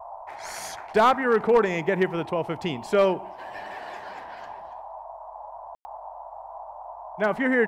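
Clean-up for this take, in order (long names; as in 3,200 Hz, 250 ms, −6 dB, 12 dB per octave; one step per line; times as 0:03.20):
clipped peaks rebuilt −11.5 dBFS
ambience match 0:05.75–0:05.85
noise reduction from a noise print 27 dB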